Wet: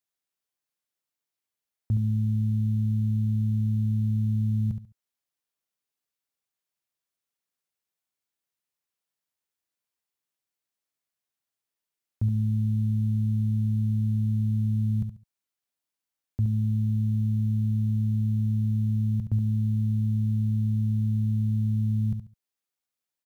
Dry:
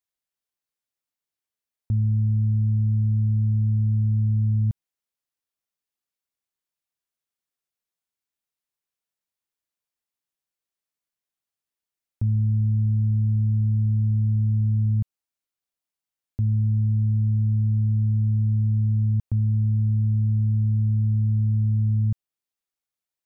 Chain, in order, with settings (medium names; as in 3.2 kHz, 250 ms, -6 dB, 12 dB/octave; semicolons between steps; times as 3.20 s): high-pass 67 Hz 6 dB/octave; short-mantissa float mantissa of 6-bit; feedback delay 70 ms, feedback 24%, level -8 dB